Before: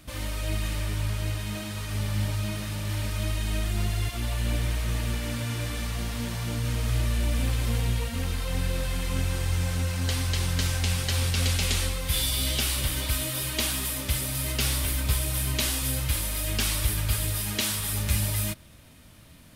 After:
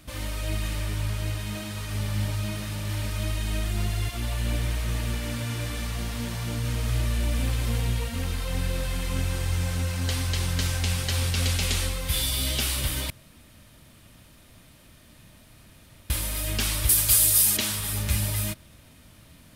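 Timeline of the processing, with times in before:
13.1–16.1 room tone
16.89–17.57 tone controls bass -5 dB, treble +14 dB

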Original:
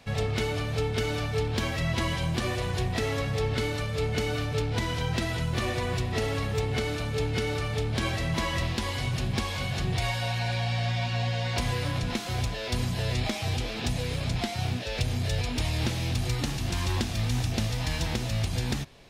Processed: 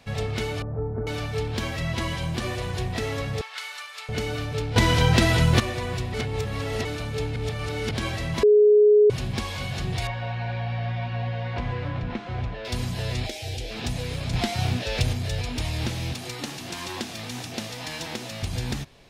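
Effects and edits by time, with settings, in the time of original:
0.62–1.07 Bessel low-pass 780 Hz, order 8
3.41–4.09 HPF 960 Hz 24 dB/oct
4.76–5.6 gain +10 dB
6.14–6.85 reverse
7.36–7.91 reverse
8.43–9.1 bleep 419 Hz -12 dBFS
10.07–12.65 LPF 2100 Hz
13.26–13.71 fixed phaser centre 470 Hz, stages 4
14.33–15.13 gain +4.5 dB
16.13–18.43 HPF 230 Hz

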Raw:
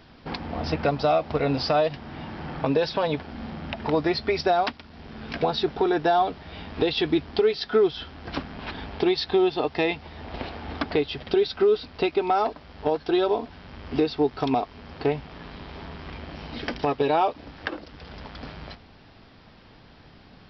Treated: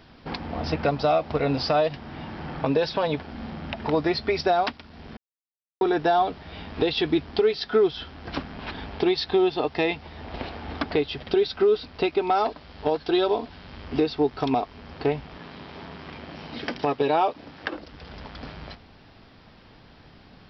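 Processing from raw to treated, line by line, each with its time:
5.17–5.81 mute
12.3–13.85 synth low-pass 4800 Hz, resonance Q 1.5
15.37–17.72 HPF 110 Hz

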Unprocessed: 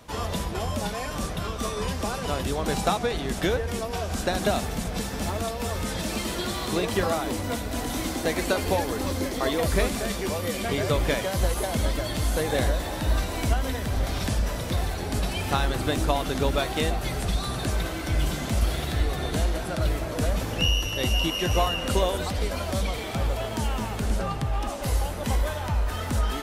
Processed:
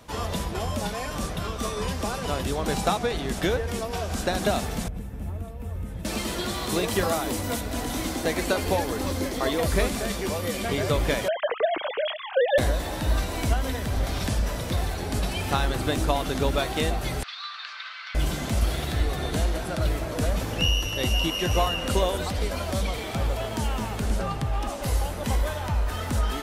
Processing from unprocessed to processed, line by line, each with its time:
4.88–6.05 EQ curve 110 Hz 0 dB, 210 Hz -7 dB, 1000 Hz -16 dB, 2600 Hz -17 dB, 4700 Hz -28 dB, 13000 Hz -14 dB
6.69–7.61 high shelf 6800 Hz +7 dB
11.28–12.58 sine-wave speech
17.23–18.15 elliptic band-pass 1200–4600 Hz, stop band 60 dB

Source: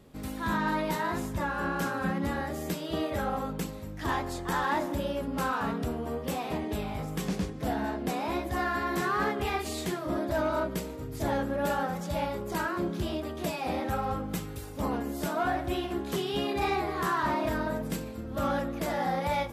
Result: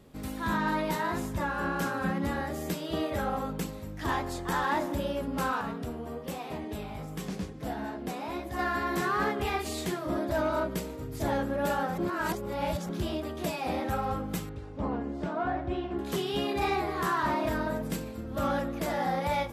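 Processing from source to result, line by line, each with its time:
5.61–8.59 flange 1.4 Hz, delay 5.3 ms, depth 4.1 ms, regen -73%
11.98–12.89 reverse
14.49–15.99 tape spacing loss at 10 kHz 28 dB

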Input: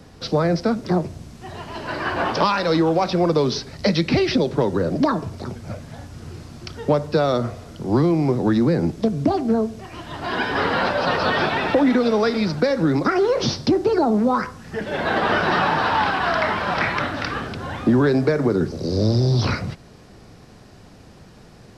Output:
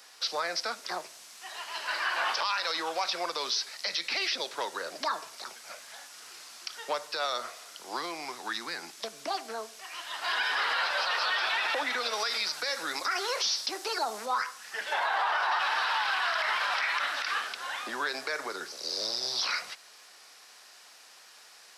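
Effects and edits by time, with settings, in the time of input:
8.25–9 bell 530 Hz -10.5 dB 0.59 oct
12.13–14.26 high shelf 5000 Hz +7 dB
14.92–15.59 bell 880 Hz +14 dB 1 oct
whole clip: HPF 1000 Hz 12 dB/oct; tilt +2.5 dB/oct; limiter -18 dBFS; gain -2 dB

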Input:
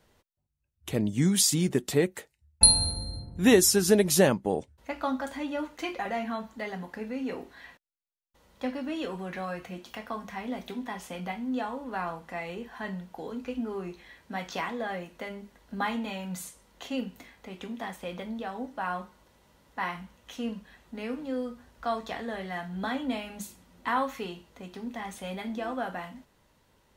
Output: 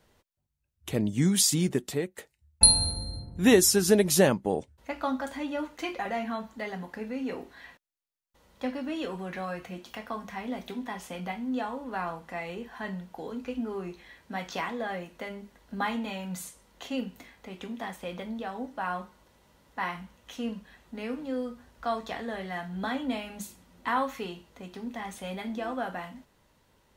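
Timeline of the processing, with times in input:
1.65–2.18 fade out, to -13 dB

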